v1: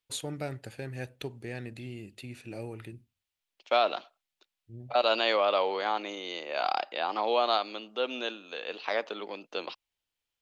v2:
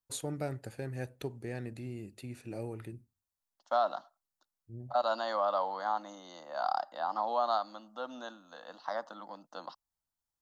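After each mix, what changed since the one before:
second voice: add static phaser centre 1 kHz, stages 4; master: add peaking EQ 3 kHz -9 dB 1.3 oct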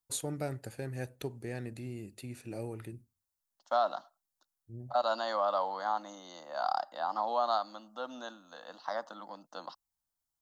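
master: add treble shelf 5.5 kHz +5.5 dB

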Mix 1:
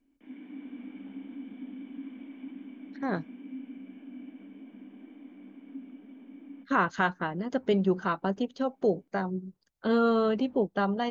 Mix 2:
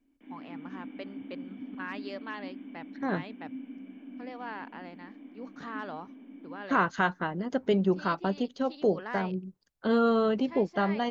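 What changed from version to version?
first voice: unmuted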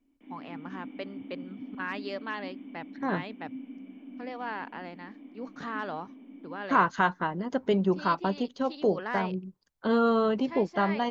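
first voice +4.0 dB; second voice: add peaking EQ 1 kHz +6 dB 0.38 oct; background: add peaking EQ 1.6 kHz -9 dB 0.25 oct

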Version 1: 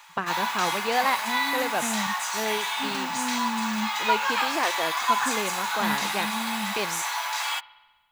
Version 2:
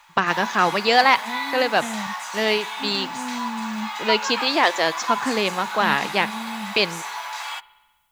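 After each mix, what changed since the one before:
first voice +7.5 dB; background: add low-pass 1.2 kHz 6 dB/octave; master: add treble shelf 3.5 kHz +11.5 dB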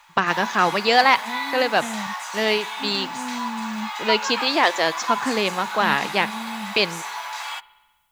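second voice: send off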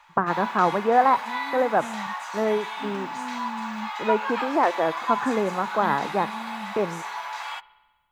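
first voice: add low-pass 1.4 kHz 24 dB/octave; second voice -4.5 dB; master: add treble shelf 3.5 kHz -11.5 dB

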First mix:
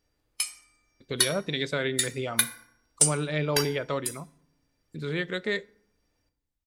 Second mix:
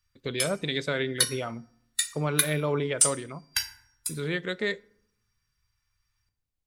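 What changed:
speech: entry -0.85 s; background: add Chebyshev band-stop 130–1100 Hz, order 3

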